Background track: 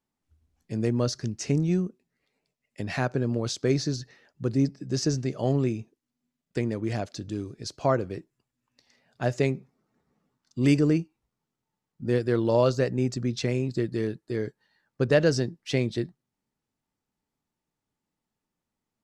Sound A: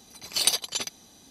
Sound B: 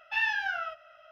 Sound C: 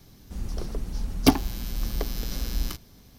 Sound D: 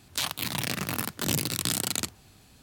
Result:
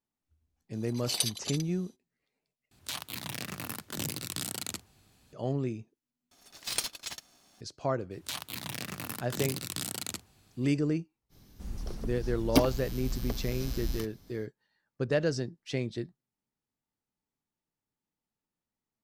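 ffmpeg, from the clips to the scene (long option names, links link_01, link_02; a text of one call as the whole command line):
ffmpeg -i bed.wav -i cue0.wav -i cue1.wav -i cue2.wav -i cue3.wav -filter_complex "[1:a]asplit=2[link_01][link_02];[4:a]asplit=2[link_03][link_04];[0:a]volume=-7dB[link_05];[link_01]acrossover=split=1500[link_06][link_07];[link_07]adelay=60[link_08];[link_06][link_08]amix=inputs=2:normalize=0[link_09];[link_02]aeval=exprs='val(0)*sgn(sin(2*PI*480*n/s))':channel_layout=same[link_10];[link_05]asplit=3[link_11][link_12][link_13];[link_11]atrim=end=2.714[link_14];[link_03]atrim=end=2.62,asetpts=PTS-STARTPTS,volume=-8dB[link_15];[link_12]atrim=start=5.326:end=6.314[link_16];[link_10]atrim=end=1.3,asetpts=PTS-STARTPTS,volume=-9.5dB[link_17];[link_13]atrim=start=7.606[link_18];[link_09]atrim=end=1.3,asetpts=PTS-STARTPTS,volume=-7dB,afade=type=in:duration=0.1,afade=type=out:start_time=1.2:duration=0.1,adelay=670[link_19];[link_04]atrim=end=2.62,asetpts=PTS-STARTPTS,volume=-8dB,afade=type=in:duration=0.004:curve=hsin,afade=type=out:start_time=2.616:duration=0.004:curve=hsin,adelay=8110[link_20];[3:a]atrim=end=3.18,asetpts=PTS-STARTPTS,volume=-6dB,afade=type=in:duration=0.05,afade=type=out:start_time=3.13:duration=0.05,adelay=11290[link_21];[link_14][link_15]acrossfade=duration=0.004:curve1=hsin:curve2=hsin[link_22];[link_22][link_16]acrossfade=duration=0.004:curve1=hsin:curve2=hsin[link_23];[link_23][link_17]acrossfade=duration=0.004:curve1=hsin:curve2=hsin[link_24];[link_24][link_18]acrossfade=duration=0.004:curve1=hsin:curve2=hsin[link_25];[link_25][link_19][link_20][link_21]amix=inputs=4:normalize=0" out.wav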